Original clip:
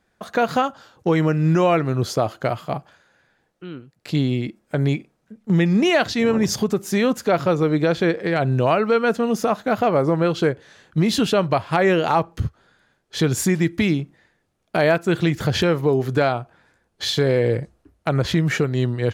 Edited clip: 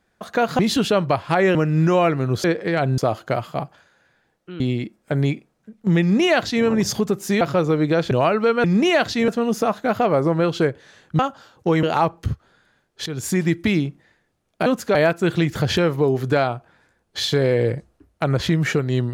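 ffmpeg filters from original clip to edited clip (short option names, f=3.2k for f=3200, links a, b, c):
-filter_complex "[0:a]asplit=15[a][b][c][d][e][f][g][h][i][j][k][l][m][n][o];[a]atrim=end=0.592[p];[b]atrim=start=11.008:end=11.972[q];[c]atrim=start=1.228:end=2.122[r];[d]atrim=start=8.028:end=8.572[s];[e]atrim=start=2.118:end=3.742[t];[f]atrim=start=4.228:end=7.042[u];[g]atrim=start=7.328:end=8.032[v];[h]atrim=start=8.568:end=9.102[w];[i]atrim=start=5.638:end=6.282[x];[j]atrim=start=9.098:end=11.012[y];[k]atrim=start=0.588:end=1.232[z];[l]atrim=start=11.968:end=13.2,asetpts=PTS-STARTPTS,afade=t=out:st=1.228:d=0.004:c=hsin:silence=0.188365[aa];[m]atrim=start=13.2:end=14.802,asetpts=PTS-STARTPTS,afade=t=in:d=0.37:silence=0.188365[ab];[n]atrim=start=7.038:end=7.332[ac];[o]atrim=start=14.798[ad];[p][q]acrossfade=d=0.004:c1=hsin:c2=hsin[ae];[ae][r]acrossfade=d=0.004:c1=hsin:c2=hsin[af];[af][s]acrossfade=d=0.004:c1=hsin:c2=hsin[ag];[ag][t]acrossfade=d=0.004:c1=hsin:c2=hsin[ah];[ah][u]acrossfade=d=0.004:c1=hsin:c2=hsin[ai];[ai][v]acrossfade=d=0.004:c1=hsin:c2=hsin[aj];[aj][w]acrossfade=d=0.004:c1=hsin:c2=hsin[ak];[ak][x]acrossfade=d=0.004:c1=hsin:c2=hsin[al];[al][y]acrossfade=d=0.004:c1=hsin:c2=hsin[am];[am][z]acrossfade=d=0.004:c1=hsin:c2=hsin[an];[aa][ab]concat=n=2:v=0:a=1[ao];[an][ao]acrossfade=d=0.004:c1=hsin:c2=hsin[ap];[ap][ac]acrossfade=d=0.004:c1=hsin:c2=hsin[aq];[aq][ad]acrossfade=d=0.004:c1=hsin:c2=hsin"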